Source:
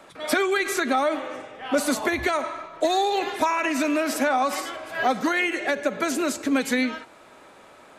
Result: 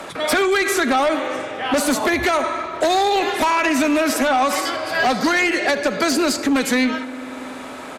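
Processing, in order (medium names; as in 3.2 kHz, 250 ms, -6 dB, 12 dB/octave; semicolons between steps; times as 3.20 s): 4.65–6.44 s: peaking EQ 4.7 kHz +13.5 dB 0.27 oct; on a send: delay 78 ms -21 dB; on the sum: spring tank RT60 3.2 s, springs 47 ms, chirp 55 ms, DRR 19 dB; Chebyshev shaper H 5 -11 dB, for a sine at -9.5 dBFS; three bands compressed up and down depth 40%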